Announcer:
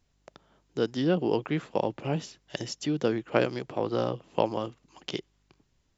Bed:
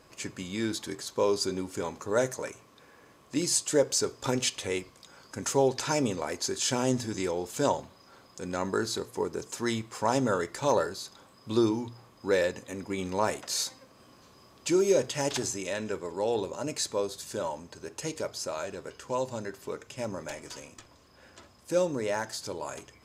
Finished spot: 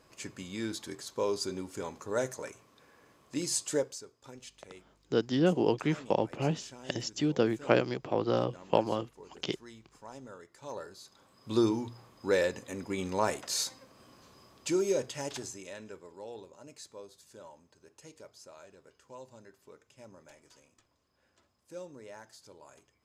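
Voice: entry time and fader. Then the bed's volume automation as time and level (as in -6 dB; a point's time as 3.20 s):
4.35 s, -0.5 dB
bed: 3.77 s -5 dB
4.05 s -21 dB
10.45 s -21 dB
11.59 s -1.5 dB
14.39 s -1.5 dB
16.51 s -17.5 dB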